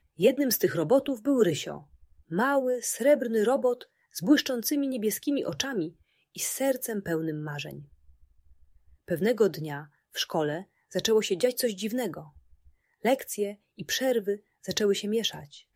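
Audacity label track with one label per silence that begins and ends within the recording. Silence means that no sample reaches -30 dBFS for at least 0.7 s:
7.730000	9.110000	silence
12.190000	13.050000	silence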